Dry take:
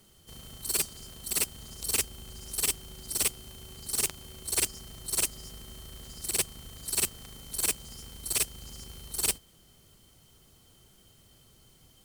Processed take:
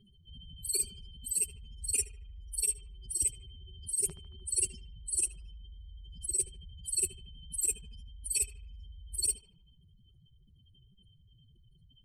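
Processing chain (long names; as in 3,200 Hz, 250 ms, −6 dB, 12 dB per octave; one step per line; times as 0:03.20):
expanding power law on the bin magnitudes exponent 3.6
pitch vibrato 9.4 Hz 20 cents
feedback echo with a band-pass in the loop 75 ms, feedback 63%, band-pass 1,100 Hz, level −9 dB
level −1.5 dB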